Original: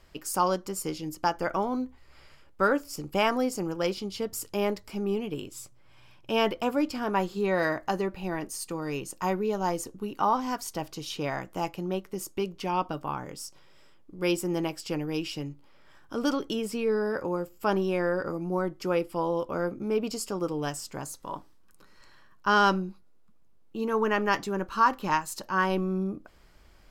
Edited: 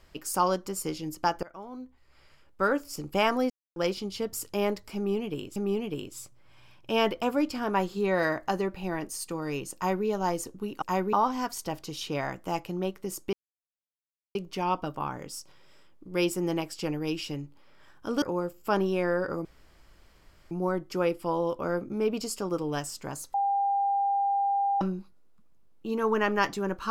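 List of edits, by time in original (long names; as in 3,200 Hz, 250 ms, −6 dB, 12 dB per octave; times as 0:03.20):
0:01.43–0:02.99: fade in, from −22 dB
0:03.50–0:03.76: silence
0:04.96–0:05.56: repeat, 2 plays
0:09.15–0:09.46: duplicate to 0:10.22
0:12.42: splice in silence 1.02 s
0:16.29–0:17.18: remove
0:18.41: splice in room tone 1.06 s
0:21.24–0:22.71: beep over 798 Hz −23 dBFS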